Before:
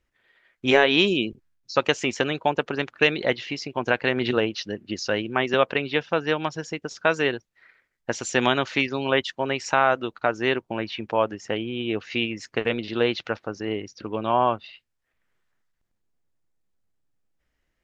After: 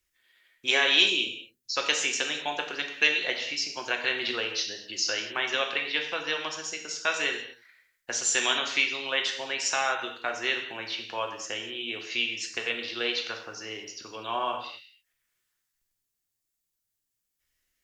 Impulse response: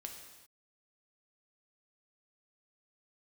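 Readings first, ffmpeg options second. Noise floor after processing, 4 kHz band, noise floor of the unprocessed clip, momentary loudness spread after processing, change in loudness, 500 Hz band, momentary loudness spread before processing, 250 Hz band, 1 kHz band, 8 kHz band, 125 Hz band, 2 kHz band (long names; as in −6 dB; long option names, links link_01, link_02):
−82 dBFS, +2.5 dB, −77 dBFS, 12 LU, −3.0 dB, −11.5 dB, 10 LU, −14.5 dB, −7.5 dB, can't be measured, −20.5 dB, −1.5 dB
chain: -filter_complex "[0:a]acrossover=split=280|760[link_01][link_02][link_03];[link_01]acompressor=threshold=-45dB:ratio=5[link_04];[link_03]crystalizer=i=9:c=0[link_05];[link_04][link_02][link_05]amix=inputs=3:normalize=0[link_06];[1:a]atrim=start_sample=2205,asetrate=70560,aresample=44100[link_07];[link_06][link_07]afir=irnorm=-1:irlink=0,volume=-3dB"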